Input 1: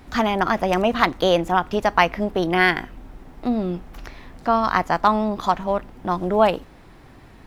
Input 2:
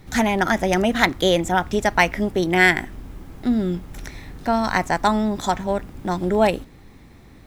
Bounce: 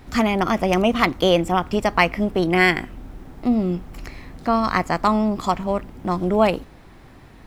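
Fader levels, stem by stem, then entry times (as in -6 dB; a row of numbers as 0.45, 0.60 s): 0.0, -7.5 dB; 0.00, 0.00 s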